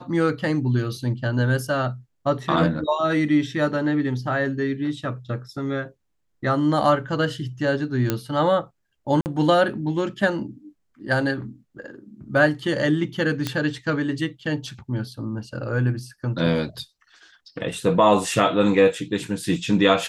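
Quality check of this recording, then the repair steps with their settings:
8.10 s: pop -7 dBFS
9.21–9.26 s: dropout 49 ms
13.47 s: pop -10 dBFS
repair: de-click; interpolate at 9.21 s, 49 ms

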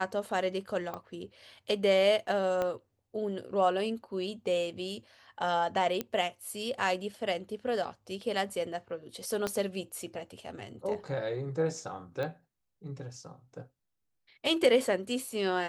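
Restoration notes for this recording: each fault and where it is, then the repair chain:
0.94 s: pop -25 dBFS
2.62 s: pop -19 dBFS
6.01 s: pop -17 dBFS
9.47 s: pop -17 dBFS
12.23 s: pop -24 dBFS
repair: de-click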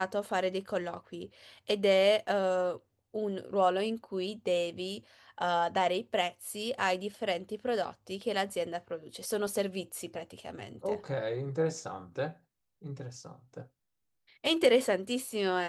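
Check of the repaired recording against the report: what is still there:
2.62 s: pop
9.47 s: pop

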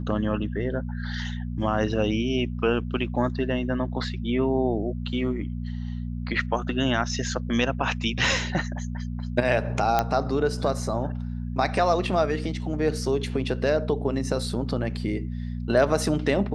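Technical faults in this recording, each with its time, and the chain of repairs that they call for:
hum 60 Hz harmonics 4 -31 dBFS
9.99 s: pop -8 dBFS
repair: de-click; de-hum 60 Hz, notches 4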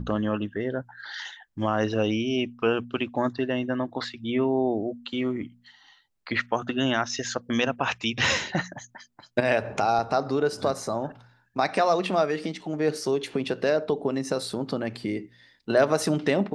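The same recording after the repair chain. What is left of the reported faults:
nothing left

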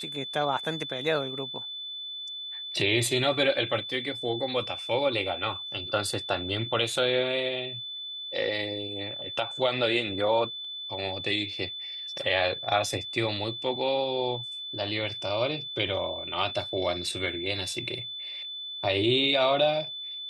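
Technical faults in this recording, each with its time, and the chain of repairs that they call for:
whine 3.5 kHz -35 dBFS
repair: band-stop 3.5 kHz, Q 30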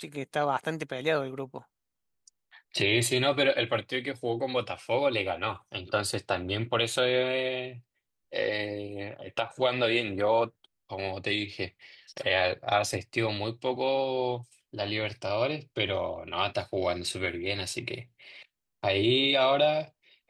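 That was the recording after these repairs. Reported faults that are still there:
nothing left

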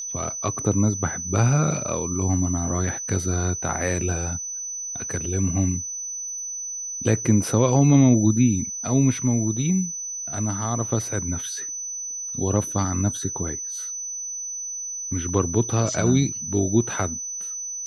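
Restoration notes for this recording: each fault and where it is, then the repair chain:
whine 6 kHz -29 dBFS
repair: band-stop 6 kHz, Q 30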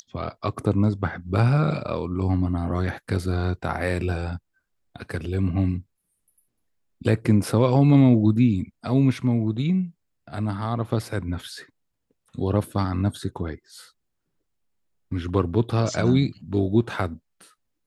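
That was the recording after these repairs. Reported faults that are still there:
nothing left

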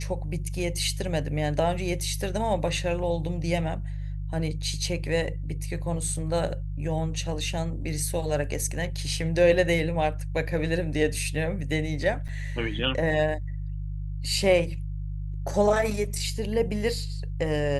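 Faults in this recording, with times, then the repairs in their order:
hum 50 Hz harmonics 3 -32 dBFS
12.28–12.29 s: dropout 7.2 ms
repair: de-hum 50 Hz, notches 3; interpolate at 12.28 s, 7.2 ms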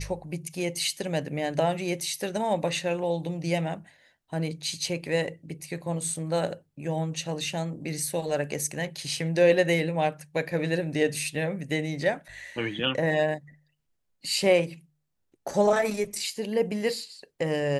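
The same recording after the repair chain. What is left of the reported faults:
nothing left

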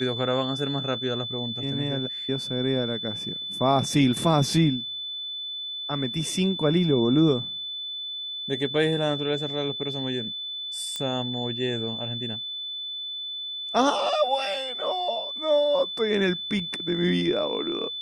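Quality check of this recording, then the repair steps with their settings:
whine 3.5 kHz -31 dBFS
10.96 s: pop -16 dBFS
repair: de-click; band-stop 3.5 kHz, Q 30

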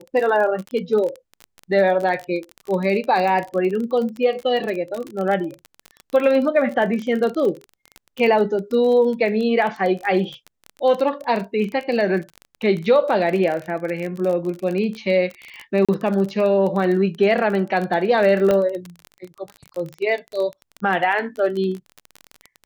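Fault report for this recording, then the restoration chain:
crackle 26 per s -25 dBFS
15.85–15.89 s: dropout 36 ms
18.51 s: pop -8 dBFS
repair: de-click; interpolate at 15.85 s, 36 ms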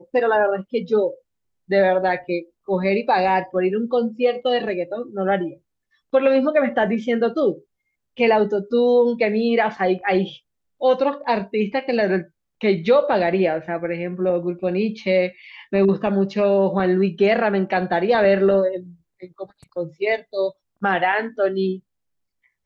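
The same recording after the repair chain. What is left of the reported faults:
nothing left

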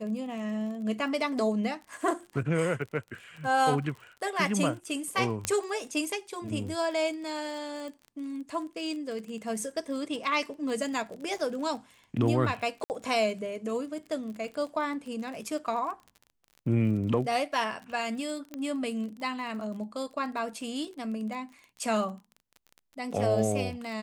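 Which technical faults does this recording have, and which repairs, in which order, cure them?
crackle 34 per s -38 dBFS
5.45 s: pop -12 dBFS
7.88 s: pop
12.84–12.90 s: dropout 59 ms
18.54 s: pop -23 dBFS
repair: de-click; interpolate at 12.84 s, 59 ms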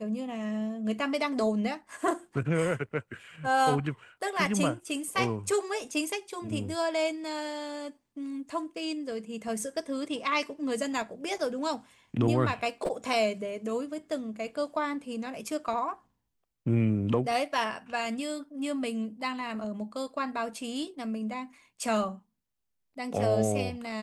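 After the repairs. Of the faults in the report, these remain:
nothing left

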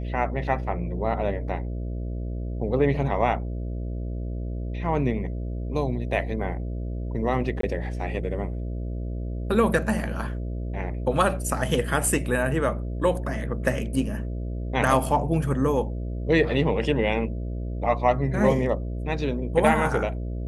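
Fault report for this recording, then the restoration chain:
buzz 60 Hz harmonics 11 -30 dBFS
7.61–7.63 s: dropout 23 ms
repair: de-hum 60 Hz, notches 11; interpolate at 7.61 s, 23 ms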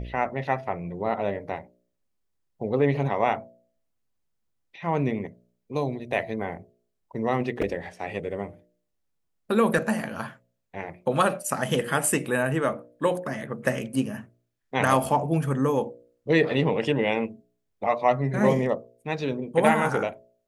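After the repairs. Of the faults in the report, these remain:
nothing left

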